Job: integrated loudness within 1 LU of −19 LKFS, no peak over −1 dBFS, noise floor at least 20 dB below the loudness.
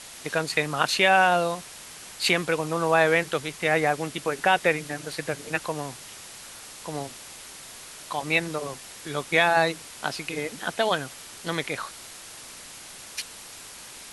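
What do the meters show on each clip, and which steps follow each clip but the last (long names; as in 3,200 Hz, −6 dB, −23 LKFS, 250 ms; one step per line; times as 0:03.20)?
background noise floor −44 dBFS; target noise floor −46 dBFS; integrated loudness −25.5 LKFS; sample peak −5.5 dBFS; target loudness −19.0 LKFS
→ broadband denoise 6 dB, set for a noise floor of −44 dBFS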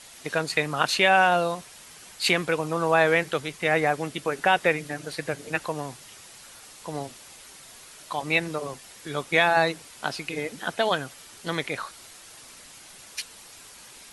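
background noise floor −48 dBFS; integrated loudness −25.0 LKFS; sample peak −5.5 dBFS; target loudness −19.0 LKFS
→ level +6 dB
brickwall limiter −1 dBFS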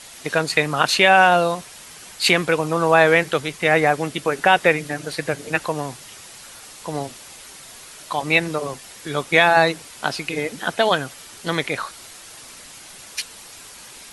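integrated loudness −19.5 LKFS; sample peak −1.0 dBFS; background noise floor −42 dBFS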